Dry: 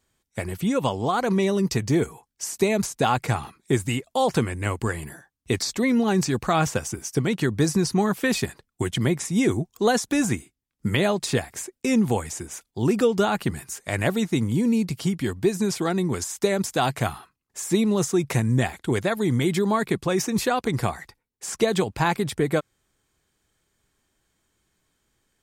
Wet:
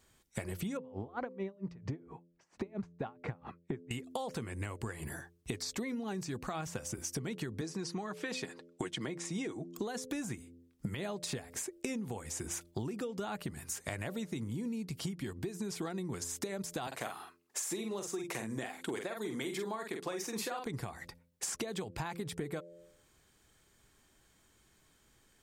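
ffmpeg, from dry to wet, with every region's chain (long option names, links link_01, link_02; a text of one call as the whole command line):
ffmpeg -i in.wav -filter_complex "[0:a]asettb=1/sr,asplit=3[link_01][link_02][link_03];[link_01]atrim=end=0.774[link_04];[link_02]atrim=start=0.77:end=3.91,asetpts=PTS-STARTPTS,afade=type=in:duration=0.004:curve=qsin,afade=type=out:start_time=3.136:duration=0.004:curve=qsin,lowpass=1800,aeval=exprs='val(0)*pow(10,-34*(0.5-0.5*cos(2*PI*4.4*n/s))/20)':channel_layout=same[link_05];[link_03]atrim=start=3.906[link_06];[link_04][link_05]acrossfade=duration=0.004:curve1=hsin:curve2=qsin[link_07];[link_07][link_06]acrossfade=duration=0.004:curve1=qsin:curve2=hsin,asettb=1/sr,asplit=3[link_08][link_09][link_10];[link_08]atrim=end=7.614[link_11];[link_09]atrim=start=7.61:end=9.76,asetpts=PTS-STARTPTS,afade=type=in:duration=0.004:curve=qsin,afade=type=out:start_time=2.146:duration=0.004:curve=qsin,highpass=240,lowpass=7000,aecho=1:1:6.4:0.33,atrim=end_sample=94815[link_12];[link_10]atrim=start=9.756[link_13];[link_11][link_12]acrossfade=duration=0.004:curve1=hsin:curve2=qsin[link_14];[link_14][link_13]acrossfade=duration=0.004:curve1=qsin:curve2=hsin,asettb=1/sr,asplit=3[link_15][link_16][link_17];[link_15]atrim=end=16.874[link_18];[link_16]atrim=start=16.87:end=20.66,asetpts=PTS-STARTPTS,afade=type=in:duration=0.004:curve=qsin,afade=type=out:start_time=3.786:duration=0.004:curve=qsin,highpass=320,asplit=2[link_19][link_20];[link_20]adelay=46,volume=-5.5dB[link_21];[link_19][link_21]amix=inputs=2:normalize=0,atrim=end_sample=167139[link_22];[link_17]atrim=start=20.656[link_23];[link_18][link_22]acrossfade=duration=0.004:curve1=hsin:curve2=qsin[link_24];[link_24][link_23]acrossfade=duration=0.004:curve1=qsin:curve2=hsin,bandreject=frequency=85.63:width_type=h:width=4,bandreject=frequency=171.26:width_type=h:width=4,bandreject=frequency=256.89:width_type=h:width=4,bandreject=frequency=342.52:width_type=h:width=4,bandreject=frequency=428.15:width_type=h:width=4,bandreject=frequency=513.78:width_type=h:width=4,bandreject=frequency=599.41:width_type=h:width=4,alimiter=limit=-17dB:level=0:latency=1:release=475,acompressor=threshold=-39dB:ratio=16,volume=4dB" out.wav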